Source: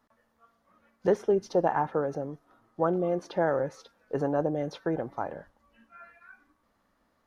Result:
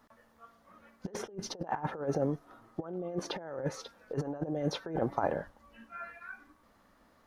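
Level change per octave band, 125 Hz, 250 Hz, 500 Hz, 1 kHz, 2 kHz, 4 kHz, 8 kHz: -1.5 dB, -4.5 dB, -8.5 dB, -6.5 dB, -4.0 dB, +6.0 dB, no reading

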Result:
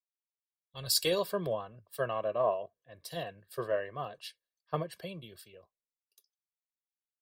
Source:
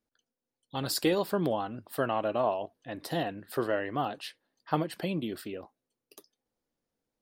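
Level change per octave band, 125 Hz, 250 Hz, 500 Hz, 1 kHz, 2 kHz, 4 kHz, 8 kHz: -5.5 dB, -11.0 dB, -2.0 dB, -5.5 dB, -4.5 dB, +2.0 dB, +3.0 dB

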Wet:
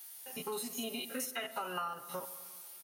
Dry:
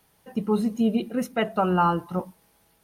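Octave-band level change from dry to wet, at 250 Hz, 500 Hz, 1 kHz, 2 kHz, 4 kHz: -21.5 dB, -15.0 dB, -15.0 dB, -8.0 dB, -1.5 dB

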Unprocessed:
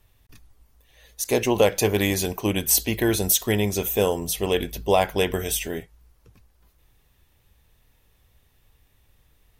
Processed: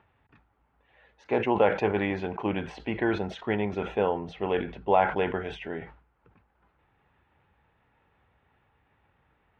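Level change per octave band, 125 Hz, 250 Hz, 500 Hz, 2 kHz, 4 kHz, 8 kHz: -8.0 dB, -4.5 dB, -4.0 dB, -3.0 dB, -14.5 dB, under -35 dB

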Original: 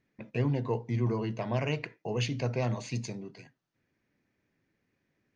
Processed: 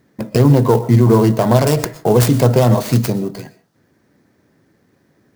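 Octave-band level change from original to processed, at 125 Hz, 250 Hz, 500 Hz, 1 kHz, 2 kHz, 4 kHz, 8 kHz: +18.0 dB, +19.5 dB, +19.5 dB, +19.0 dB, +11.0 dB, +13.5 dB, no reading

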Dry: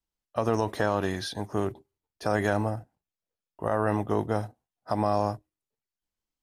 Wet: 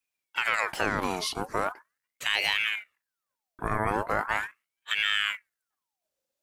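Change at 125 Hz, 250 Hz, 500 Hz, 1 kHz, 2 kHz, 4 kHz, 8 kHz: -9.5 dB, -8.0 dB, -7.0 dB, -0.5 dB, +9.5 dB, +13.0 dB, +5.5 dB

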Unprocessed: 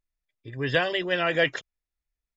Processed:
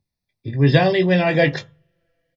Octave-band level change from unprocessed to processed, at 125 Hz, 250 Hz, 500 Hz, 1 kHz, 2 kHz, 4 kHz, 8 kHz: +17.5 dB, +14.0 dB, +8.5 dB, +7.5 dB, +3.0 dB, +2.0 dB, no reading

